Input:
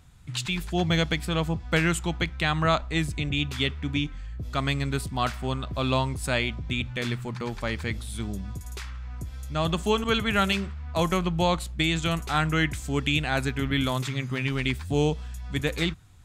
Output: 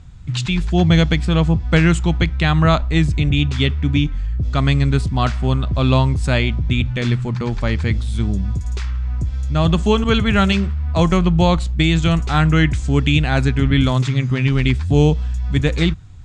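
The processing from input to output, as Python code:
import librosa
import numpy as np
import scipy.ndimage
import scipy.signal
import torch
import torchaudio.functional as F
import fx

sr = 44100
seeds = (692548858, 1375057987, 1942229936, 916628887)

y = scipy.signal.sosfilt(scipy.signal.butter(4, 7600.0, 'lowpass', fs=sr, output='sos'), x)
y = fx.low_shelf(y, sr, hz=230.0, db=11.0)
y = F.gain(torch.from_numpy(y), 5.0).numpy()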